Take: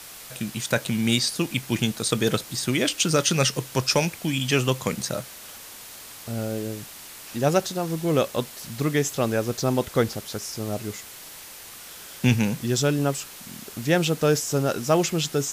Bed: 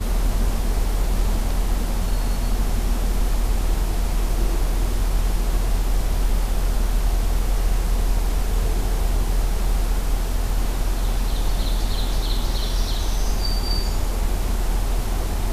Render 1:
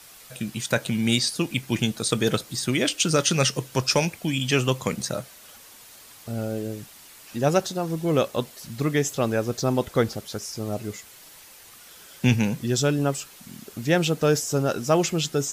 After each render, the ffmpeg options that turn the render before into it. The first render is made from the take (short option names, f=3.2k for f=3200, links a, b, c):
-af "afftdn=nr=7:nf=-42"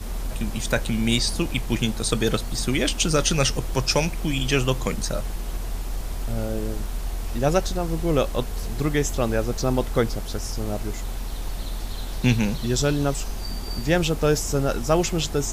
-filter_complex "[1:a]volume=-8.5dB[a];[0:a][a]amix=inputs=2:normalize=0"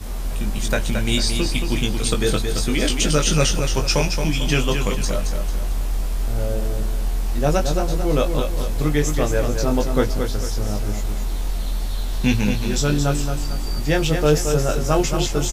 -filter_complex "[0:a]asplit=2[a][b];[b]adelay=20,volume=-4.5dB[c];[a][c]amix=inputs=2:normalize=0,asplit=2[d][e];[e]aecho=0:1:223|446|669|892|1115:0.473|0.194|0.0795|0.0326|0.0134[f];[d][f]amix=inputs=2:normalize=0"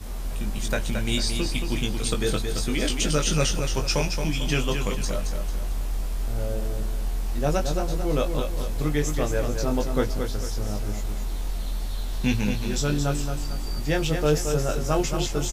-af "volume=-5dB"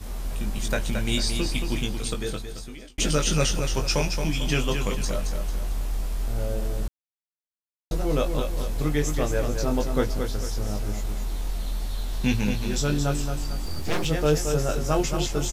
-filter_complex "[0:a]asettb=1/sr,asplit=3[a][b][c];[a]atrim=end=13.654[d];[b]atrim=start=13.65:end=14.05,asetpts=PTS-STARTPTS,afade=t=in:d=0.004:c=qsin,afade=t=out:st=0.396:d=0.004:c=qsin,aeval=exprs='abs(val(0))':c=same[e];[c]atrim=start=14.046[f];[d][e]acrossfade=d=0.004:c1=hsin:c2=qsin[g];[g][f]acrossfade=d=0.004:c1=qsin:c2=hsin,asplit=4[h][i][j][k];[h]atrim=end=2.98,asetpts=PTS-STARTPTS,afade=t=out:st=1.66:d=1.32[l];[i]atrim=start=2.98:end=6.88,asetpts=PTS-STARTPTS,afade=t=in:d=0.004:c=hsin,afade=t=out:st=3.896:d=0.004:c=hsin[m];[j]atrim=start=6.88:end=7.91,asetpts=PTS-STARTPTS,volume=0[n];[k]atrim=start=7.91,asetpts=PTS-STARTPTS,afade=t=in:d=0.004:c=hsin[o];[l][m][n][o]concat=n=4:v=0:a=1"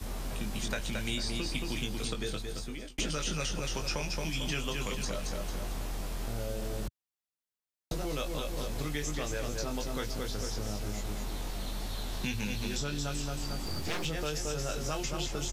-filter_complex "[0:a]acrossover=split=800[a][b];[a]alimiter=limit=-20.5dB:level=0:latency=1[c];[c][b]amix=inputs=2:normalize=0,acrossover=split=87|2300|6800[d][e][f][g];[d]acompressor=threshold=-38dB:ratio=4[h];[e]acompressor=threshold=-35dB:ratio=4[i];[f]acompressor=threshold=-38dB:ratio=4[j];[g]acompressor=threshold=-51dB:ratio=4[k];[h][i][j][k]amix=inputs=4:normalize=0"